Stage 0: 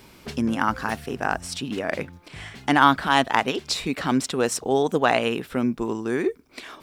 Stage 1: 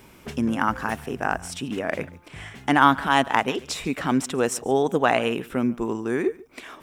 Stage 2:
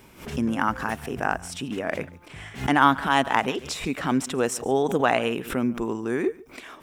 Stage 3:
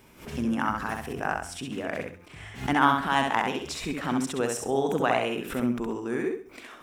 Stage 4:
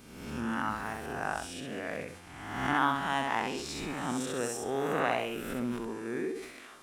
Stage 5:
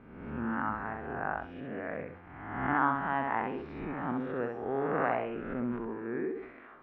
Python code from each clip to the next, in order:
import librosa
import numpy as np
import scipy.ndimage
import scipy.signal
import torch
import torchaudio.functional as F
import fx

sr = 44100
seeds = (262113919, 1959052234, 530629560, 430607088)

y1 = fx.peak_eq(x, sr, hz=4400.0, db=-8.5, octaves=0.55)
y1 = y1 + 10.0 ** (-21.5 / 20.0) * np.pad(y1, (int(142 * sr / 1000.0), 0))[:len(y1)]
y2 = fx.pre_swell(y1, sr, db_per_s=140.0)
y2 = F.gain(torch.from_numpy(y2), -1.5).numpy()
y3 = fx.echo_feedback(y2, sr, ms=66, feedback_pct=26, wet_db=-4.0)
y3 = F.gain(torch.from_numpy(y3), -4.5).numpy()
y4 = fx.spec_swells(y3, sr, rise_s=1.06)
y4 = fx.dmg_buzz(y4, sr, base_hz=400.0, harmonics=29, level_db=-53.0, tilt_db=-1, odd_only=False)
y4 = fx.sustainer(y4, sr, db_per_s=71.0)
y4 = F.gain(torch.from_numpy(y4), -8.5).numpy()
y5 = scipy.signal.sosfilt(scipy.signal.butter(4, 1900.0, 'lowpass', fs=sr, output='sos'), y4)